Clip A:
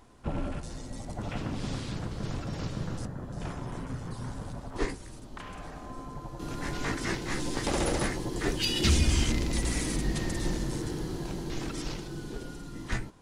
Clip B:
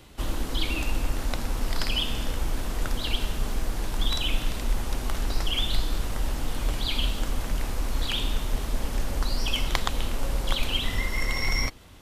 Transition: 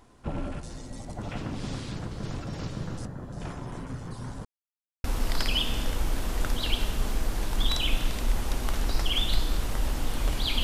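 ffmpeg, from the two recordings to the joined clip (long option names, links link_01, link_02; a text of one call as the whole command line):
ffmpeg -i cue0.wav -i cue1.wav -filter_complex "[0:a]apad=whole_dur=10.63,atrim=end=10.63,asplit=2[link_01][link_02];[link_01]atrim=end=4.45,asetpts=PTS-STARTPTS,afade=type=out:start_time=4.446:duration=0.004:curve=hsin[link_03];[link_02]atrim=start=4.45:end=5.04,asetpts=PTS-STARTPTS,volume=0[link_04];[1:a]atrim=start=1.45:end=7.04,asetpts=PTS-STARTPTS,afade=type=in:duration=0.004:curve=hsin[link_05];[link_03][link_04][link_05]concat=n=3:v=0:a=1" out.wav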